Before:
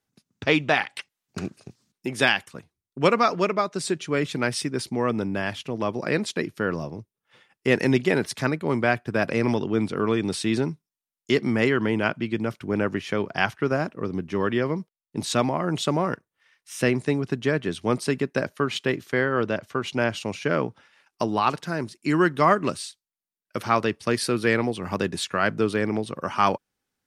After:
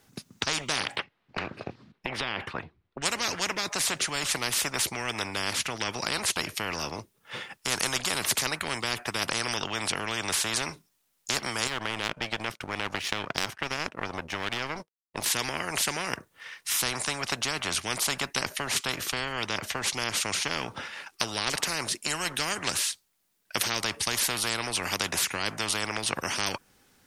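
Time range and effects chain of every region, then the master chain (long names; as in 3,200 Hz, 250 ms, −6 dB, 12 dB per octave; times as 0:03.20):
0:00.96–0:03.02: downward compressor, threshold −28 dBFS + high-frequency loss of the air 390 metres
0:11.67–0:15.26: power curve on the samples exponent 1.4 + downward compressor 2 to 1, threshold −30 dBFS
whole clip: dynamic equaliser 3,800 Hz, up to −5 dB, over −44 dBFS, Q 1.3; every bin compressed towards the loudest bin 10 to 1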